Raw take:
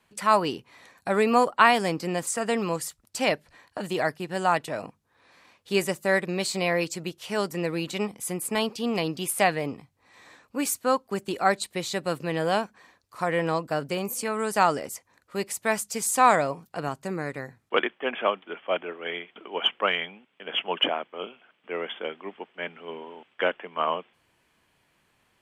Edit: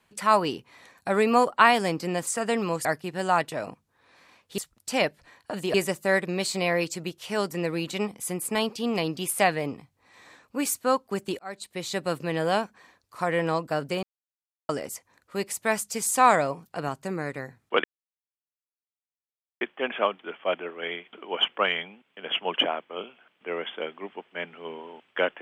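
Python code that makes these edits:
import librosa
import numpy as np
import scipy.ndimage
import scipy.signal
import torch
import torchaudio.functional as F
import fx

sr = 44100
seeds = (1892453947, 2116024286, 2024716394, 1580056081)

y = fx.edit(x, sr, fx.move(start_s=2.85, length_s=1.16, to_s=5.74),
    fx.fade_in_span(start_s=11.39, length_s=0.58),
    fx.silence(start_s=14.03, length_s=0.66),
    fx.insert_silence(at_s=17.84, length_s=1.77), tone=tone)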